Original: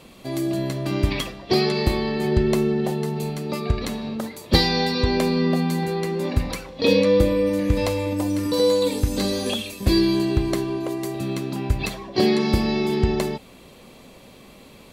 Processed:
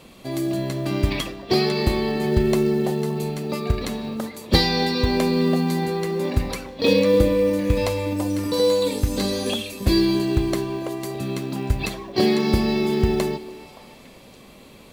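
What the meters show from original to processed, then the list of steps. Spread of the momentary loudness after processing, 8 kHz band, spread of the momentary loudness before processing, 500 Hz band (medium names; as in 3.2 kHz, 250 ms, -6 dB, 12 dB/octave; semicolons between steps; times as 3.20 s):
9 LU, +0.5 dB, 9 LU, +0.5 dB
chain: repeats whose band climbs or falls 285 ms, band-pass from 340 Hz, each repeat 1.4 oct, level -11.5 dB; short-mantissa float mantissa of 4-bit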